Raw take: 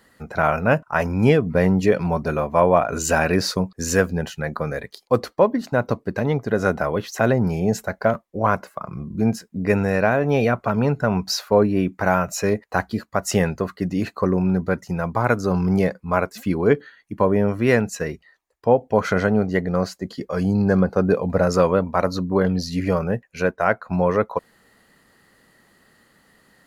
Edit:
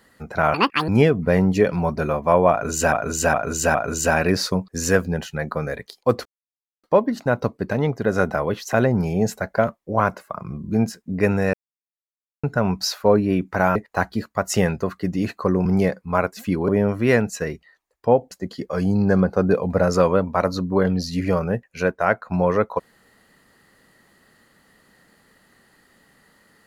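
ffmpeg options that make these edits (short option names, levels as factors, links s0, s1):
-filter_complex "[0:a]asplit=13[s0][s1][s2][s3][s4][s5][s6][s7][s8][s9][s10][s11][s12];[s0]atrim=end=0.544[s13];[s1]atrim=start=0.54:end=1.16,asetpts=PTS-STARTPTS,asetrate=79380,aresample=44100[s14];[s2]atrim=start=1.156:end=3.202[s15];[s3]atrim=start=2.788:end=3.202[s16];[s4]atrim=start=2.788:end=3.202[s17];[s5]atrim=start=2.788:end=5.3,asetpts=PTS-STARTPTS,afade=t=out:st=2.508:d=0.004:c=hsin,apad=pad_dur=0.58[s18];[s6]atrim=start=5.3:end=10,asetpts=PTS-STARTPTS,afade=t=in:d=0.004:c=hsin,afade=t=out:st=4.696:d=0.004:c=hsin[s19];[s7]atrim=start=10:end=10.9,asetpts=PTS-STARTPTS,volume=0[s20];[s8]atrim=start=10.9:end=12.222,asetpts=PTS-STARTPTS,afade=t=in:d=0.004:c=hsin[s21];[s9]atrim=start=12.528:end=14.432[s22];[s10]atrim=start=15.638:end=16.672[s23];[s11]atrim=start=17.278:end=18.912[s24];[s12]atrim=start=19.908[s25];[s13][s14]acrossfade=d=0.004:c1=hsin:c2=hsin[s26];[s26][s15]acrossfade=d=0.004:c1=hsin:c2=hsin[s27];[s27][s16]acrossfade=d=0.004:c1=hsin:c2=hsin[s28];[s28][s17]acrossfade=d=0.004:c1=hsin:c2=hsin[s29];[s18][s19][s20][s21]concat=n=4:v=0:a=1[s30];[s29][s30]acrossfade=d=0.004:c1=hsin:c2=hsin[s31];[s31][s22]acrossfade=d=0.004:c1=hsin:c2=hsin[s32];[s32][s23]acrossfade=d=0.004:c1=hsin:c2=hsin[s33];[s33][s24]acrossfade=d=0.004:c1=hsin:c2=hsin[s34];[s34][s25]acrossfade=d=0.004:c1=hsin:c2=hsin"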